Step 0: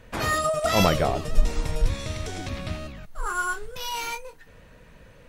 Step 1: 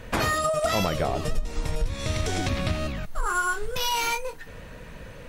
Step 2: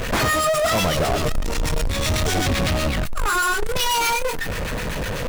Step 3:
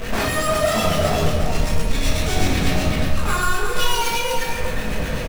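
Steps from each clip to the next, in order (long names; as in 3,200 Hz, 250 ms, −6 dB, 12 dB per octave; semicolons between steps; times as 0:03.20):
downward compressor 8 to 1, threshold −30 dBFS, peak gain reduction 20 dB; level +8.5 dB
two-band tremolo in antiphase 8 Hz, depth 70%, crossover 1,200 Hz; power curve on the samples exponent 0.35
single-tap delay 353 ms −5.5 dB; rectangular room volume 290 cubic metres, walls mixed, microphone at 1.6 metres; level −6 dB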